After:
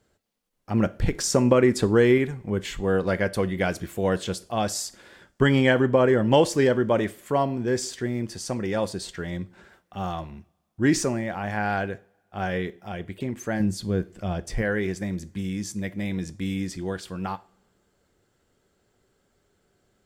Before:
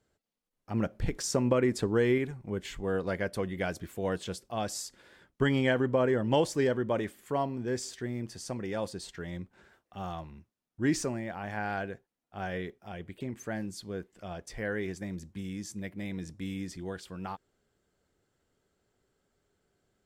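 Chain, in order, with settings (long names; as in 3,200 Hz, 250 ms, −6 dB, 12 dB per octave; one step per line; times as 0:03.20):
0:13.60–0:14.62: low-shelf EQ 260 Hz +9.5 dB
coupled-rooms reverb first 0.37 s, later 1.7 s, from −25 dB, DRR 14.5 dB
level +7.5 dB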